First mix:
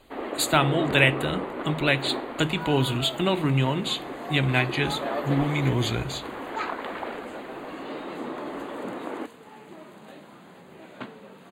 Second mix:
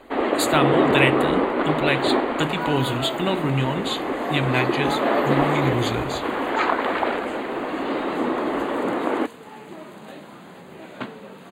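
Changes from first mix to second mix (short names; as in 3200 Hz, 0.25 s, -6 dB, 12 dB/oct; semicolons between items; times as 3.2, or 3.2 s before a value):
first sound +11.0 dB; second sound +6.0 dB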